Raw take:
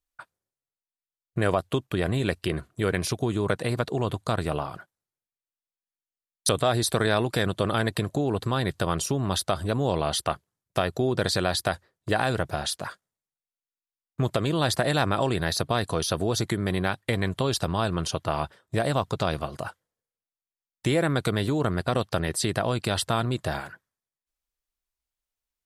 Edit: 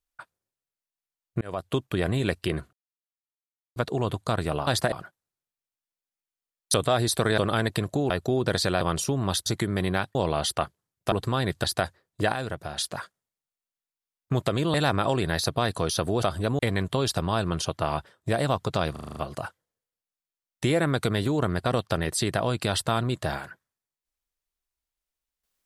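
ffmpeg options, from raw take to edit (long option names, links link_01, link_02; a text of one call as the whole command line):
ffmpeg -i in.wav -filter_complex "[0:a]asplit=24[link_01][link_02][link_03][link_04][link_05][link_06][link_07][link_08][link_09][link_10][link_11][link_12][link_13][link_14][link_15][link_16][link_17][link_18][link_19][link_20][link_21][link_22][link_23][link_24];[link_01]atrim=end=1.41,asetpts=PTS-STARTPTS,afade=type=out:start_time=1.406:duration=0.004:curve=hsin[link_25];[link_02]atrim=start=1.41:end=2.73,asetpts=PTS-STARTPTS,afade=type=in:duration=0.35,afade=type=out:start_time=1.316:duration=0.004:curve=hsin[link_26];[link_03]atrim=start=2.73:end=3.76,asetpts=PTS-STARTPTS,volume=0[link_27];[link_04]atrim=start=3.76:end=4.672,asetpts=PTS-STARTPTS,afade=type=in:duration=0.004:curve=hsin[link_28];[link_05]atrim=start=14.618:end=14.872[link_29];[link_06]atrim=start=4.668:end=7.132[link_30];[link_07]atrim=start=7.588:end=8.312[link_31];[link_08]atrim=start=10.808:end=11.522[link_32];[link_09]atrim=start=8.828:end=9.482[link_33];[link_10]atrim=start=16.358:end=17.052[link_34];[link_11]atrim=start=9.838:end=10.812[link_35];[link_12]atrim=start=8.308:end=8.832[link_36];[link_13]atrim=start=11.518:end=12.202[link_37];[link_14]atrim=start=12.198:end=12.662,asetpts=PTS-STARTPTS,volume=-6dB[link_38];[link_15]atrim=start=12.658:end=14.622[link_39];[link_16]atrim=start=14.868:end=16.362[link_40];[link_17]atrim=start=9.478:end=9.842[link_41];[link_18]atrim=start=17.048:end=19.422[link_42];[link_19]atrim=start=19.378:end=19.422[link_43];[link_20]atrim=start=19.378:end=19.422[link_44];[link_21]atrim=start=19.378:end=19.422[link_45];[link_22]atrim=start=19.378:end=19.422[link_46];[link_23]atrim=start=19.378:end=19.422[link_47];[link_24]atrim=start=19.378[link_48];[link_25][link_26][link_27][link_28]concat=n=4:v=0:a=1[link_49];[link_49][link_29]acrossfade=duration=0.004:curve1=hsin:curve2=hsin[link_50];[link_50][link_30]acrossfade=duration=0.004:curve1=hsin:curve2=hsin[link_51];[link_51][link_31]acrossfade=duration=0.004:curve1=hsin:curve2=hsin[link_52];[link_52][link_32]acrossfade=duration=0.004:curve1=hsin:curve2=hsin[link_53];[link_53][link_33]acrossfade=duration=0.004:curve1=hsin:curve2=hsin[link_54];[link_54][link_34]acrossfade=duration=0.004:curve1=hsin:curve2=hsin[link_55];[link_55][link_35]acrossfade=duration=0.004:curve1=hsin:curve2=hsin[link_56];[link_56][link_36]acrossfade=duration=0.004:curve1=hsin:curve2=hsin[link_57];[link_57][link_37]acrossfade=duration=0.004:curve1=hsin:curve2=hsin[link_58];[link_58][link_38]acrossfade=duration=0.004:curve1=hsin:curve2=hsin[link_59];[link_59][link_39]acrossfade=duration=0.004:curve1=hsin:curve2=hsin[link_60];[link_60][link_40]acrossfade=duration=0.004:curve1=hsin:curve2=hsin[link_61];[link_61][link_41]acrossfade=duration=0.004:curve1=hsin:curve2=hsin[link_62];[link_62][link_42]acrossfade=duration=0.004:curve1=hsin:curve2=hsin[link_63];[link_63][link_43]acrossfade=duration=0.004:curve1=hsin:curve2=hsin[link_64];[link_64][link_44]acrossfade=duration=0.004:curve1=hsin:curve2=hsin[link_65];[link_65][link_45]acrossfade=duration=0.004:curve1=hsin:curve2=hsin[link_66];[link_66][link_46]acrossfade=duration=0.004:curve1=hsin:curve2=hsin[link_67];[link_67][link_47]acrossfade=duration=0.004:curve1=hsin:curve2=hsin[link_68];[link_68][link_48]acrossfade=duration=0.004:curve1=hsin:curve2=hsin" out.wav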